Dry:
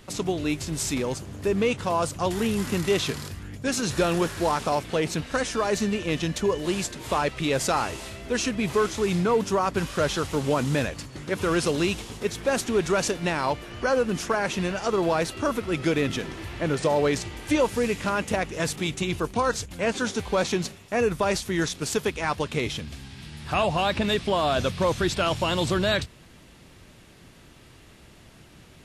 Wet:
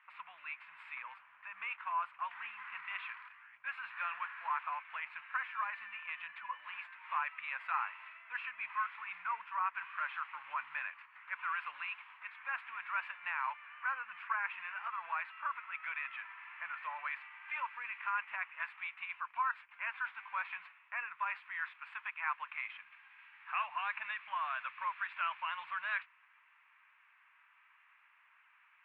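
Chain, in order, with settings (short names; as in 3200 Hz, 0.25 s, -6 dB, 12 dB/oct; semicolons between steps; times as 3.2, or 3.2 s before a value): elliptic band-pass 1000–2500 Hz, stop band 50 dB; gain -6 dB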